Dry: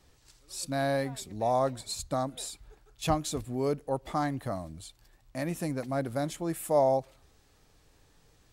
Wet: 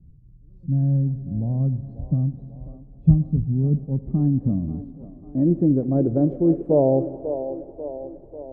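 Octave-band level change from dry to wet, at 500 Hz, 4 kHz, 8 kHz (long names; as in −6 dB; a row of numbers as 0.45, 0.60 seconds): +5.0 dB, below −40 dB, below −40 dB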